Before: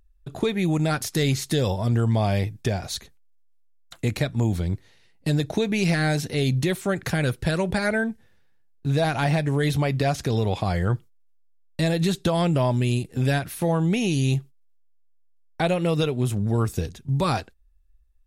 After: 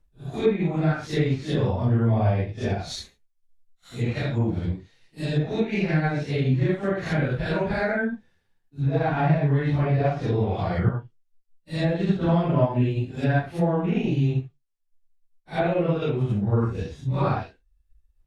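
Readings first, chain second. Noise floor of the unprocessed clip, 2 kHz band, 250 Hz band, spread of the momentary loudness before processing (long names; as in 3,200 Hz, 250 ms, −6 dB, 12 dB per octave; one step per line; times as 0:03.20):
−58 dBFS, −2.0 dB, 0.0 dB, 7 LU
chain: random phases in long frames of 200 ms
treble cut that deepens with the level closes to 1,900 Hz, closed at −19.5 dBFS
transient designer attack +1 dB, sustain −3 dB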